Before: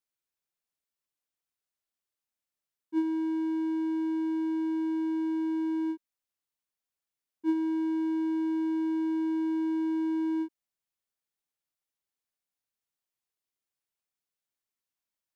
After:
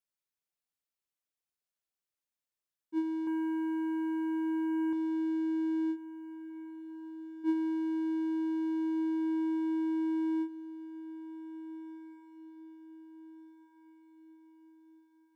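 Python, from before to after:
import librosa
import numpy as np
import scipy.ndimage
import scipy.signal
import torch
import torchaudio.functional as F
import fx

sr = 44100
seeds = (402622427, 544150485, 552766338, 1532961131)

p1 = fx.leveller(x, sr, passes=3, at=(3.27, 4.93))
p2 = fx.rider(p1, sr, range_db=10, speed_s=0.5)
p3 = p2 + fx.echo_diffused(p2, sr, ms=1778, feedback_pct=44, wet_db=-14.5, dry=0)
y = F.gain(torch.from_numpy(p3), -4.0).numpy()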